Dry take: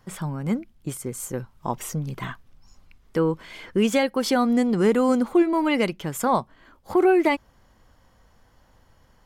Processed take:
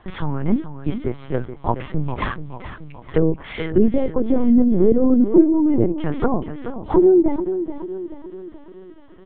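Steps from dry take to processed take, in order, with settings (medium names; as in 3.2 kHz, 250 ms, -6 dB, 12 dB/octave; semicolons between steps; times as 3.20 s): low-pass that closes with the level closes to 380 Hz, closed at -19 dBFS; 1.53–2.09 s: distance through air 170 m; feedback delay 429 ms, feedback 50%, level -10.5 dB; LPC vocoder at 8 kHz pitch kept; trim +8 dB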